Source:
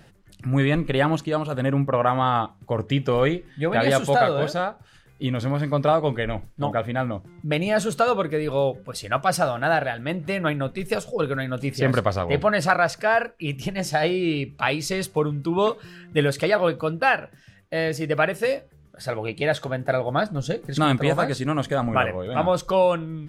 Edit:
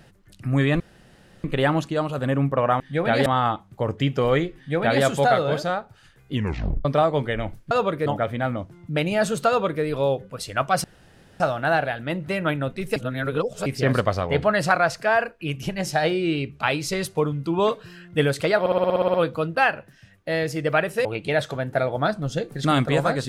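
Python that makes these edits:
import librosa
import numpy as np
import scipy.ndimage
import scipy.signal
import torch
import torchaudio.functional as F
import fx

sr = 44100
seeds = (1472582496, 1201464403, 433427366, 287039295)

y = fx.edit(x, sr, fx.insert_room_tone(at_s=0.8, length_s=0.64),
    fx.duplicate(start_s=3.47, length_s=0.46, to_s=2.16),
    fx.tape_stop(start_s=5.24, length_s=0.51),
    fx.duplicate(start_s=8.03, length_s=0.35, to_s=6.61),
    fx.insert_room_tone(at_s=9.39, length_s=0.56),
    fx.reverse_span(start_s=10.95, length_s=0.7),
    fx.stutter(start_s=16.59, slice_s=0.06, count=10),
    fx.cut(start_s=18.5, length_s=0.68), tone=tone)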